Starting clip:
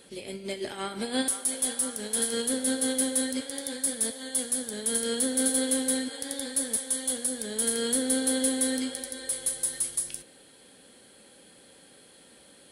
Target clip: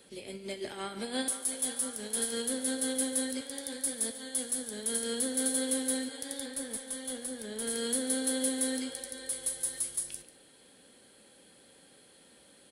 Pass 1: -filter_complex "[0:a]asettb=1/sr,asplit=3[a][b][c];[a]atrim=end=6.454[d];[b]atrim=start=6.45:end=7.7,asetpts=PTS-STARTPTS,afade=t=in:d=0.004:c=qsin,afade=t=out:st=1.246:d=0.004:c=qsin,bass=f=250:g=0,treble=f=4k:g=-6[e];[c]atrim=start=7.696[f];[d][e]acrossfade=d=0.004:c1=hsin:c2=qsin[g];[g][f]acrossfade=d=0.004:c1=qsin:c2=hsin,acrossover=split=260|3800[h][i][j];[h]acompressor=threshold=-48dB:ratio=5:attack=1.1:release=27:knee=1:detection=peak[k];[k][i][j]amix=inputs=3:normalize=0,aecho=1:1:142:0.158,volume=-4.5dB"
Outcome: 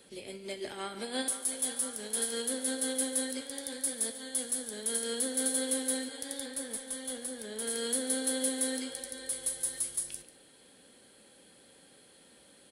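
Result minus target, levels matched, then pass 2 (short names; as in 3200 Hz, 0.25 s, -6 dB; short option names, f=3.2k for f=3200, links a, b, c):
compressor: peak gain reduction +8.5 dB
-filter_complex "[0:a]asettb=1/sr,asplit=3[a][b][c];[a]atrim=end=6.454[d];[b]atrim=start=6.45:end=7.7,asetpts=PTS-STARTPTS,afade=t=in:d=0.004:c=qsin,afade=t=out:st=1.246:d=0.004:c=qsin,bass=f=250:g=0,treble=f=4k:g=-6[e];[c]atrim=start=7.696[f];[d][e]acrossfade=d=0.004:c1=hsin:c2=qsin[g];[g][f]acrossfade=d=0.004:c1=qsin:c2=hsin,acrossover=split=260|3800[h][i][j];[h]acompressor=threshold=-37.5dB:ratio=5:attack=1.1:release=27:knee=1:detection=peak[k];[k][i][j]amix=inputs=3:normalize=0,aecho=1:1:142:0.158,volume=-4.5dB"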